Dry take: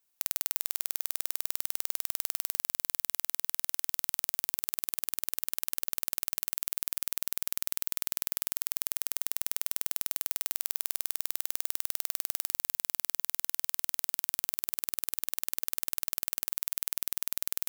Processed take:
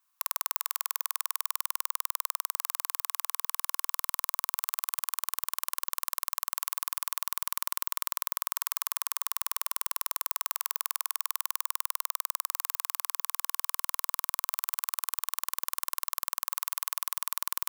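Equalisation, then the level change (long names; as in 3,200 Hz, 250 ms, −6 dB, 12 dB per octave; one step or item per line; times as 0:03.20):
high-pass with resonance 1,100 Hz, resonance Q 6.5
0.0 dB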